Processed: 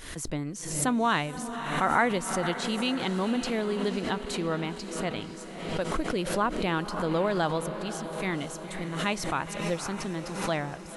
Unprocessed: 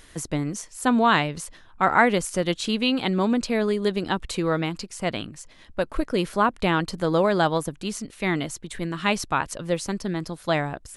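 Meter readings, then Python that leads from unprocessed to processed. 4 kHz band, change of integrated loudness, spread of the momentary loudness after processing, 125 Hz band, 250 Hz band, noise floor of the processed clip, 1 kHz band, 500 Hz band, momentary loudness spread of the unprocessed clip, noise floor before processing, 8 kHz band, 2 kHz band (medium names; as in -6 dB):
-4.5 dB, -5.0 dB, 9 LU, -4.5 dB, -5.0 dB, -40 dBFS, -5.0 dB, -5.0 dB, 11 LU, -50 dBFS, -1.5 dB, -5.0 dB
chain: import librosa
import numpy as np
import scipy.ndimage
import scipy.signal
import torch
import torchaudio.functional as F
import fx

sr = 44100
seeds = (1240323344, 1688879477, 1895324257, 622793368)

y = fx.echo_diffused(x, sr, ms=527, feedback_pct=62, wet_db=-10.5)
y = fx.pre_swell(y, sr, db_per_s=57.0)
y = F.gain(torch.from_numpy(y), -6.5).numpy()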